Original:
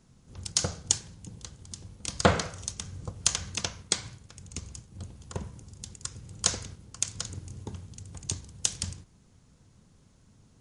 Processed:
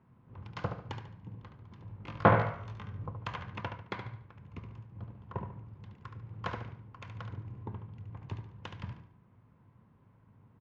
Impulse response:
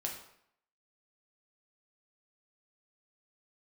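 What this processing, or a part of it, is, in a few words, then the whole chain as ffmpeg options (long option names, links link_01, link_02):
bass cabinet: -filter_complex "[0:a]asettb=1/sr,asplit=3[link_01][link_02][link_03];[link_01]atrim=end=1.864[link_04];[link_02]atrim=start=1.86:end=3.07,asetpts=PTS-STARTPTS,afade=type=in:duration=0.004:curve=qsin,afade=type=out:start_time=1.206:duration=0.004:curve=qsin,asplit=2[link_05][link_06];[link_06]adelay=19,volume=-3.5dB[link_07];[link_05][link_07]amix=inputs=2:normalize=0,atrim=end_sample=53361[link_08];[link_03]atrim=start=3.066[link_09];[link_04][link_08]acrossfade=duration=0.004:curve1=hsin:curve2=qsin[link_10];[link_10][link_09]acrossfade=duration=0.004:curve1=qsin:curve2=hsin,highpass=68,equalizer=frequency=75:width_type=q:width=4:gain=-7,equalizer=frequency=110:width_type=q:width=4:gain=7,equalizer=frequency=1000:width_type=q:width=4:gain=9,lowpass=frequency=2300:width=0.5412,lowpass=frequency=2300:width=1.3066,aecho=1:1:72|144|216|288:0.398|0.135|0.046|0.0156,volume=-3.5dB"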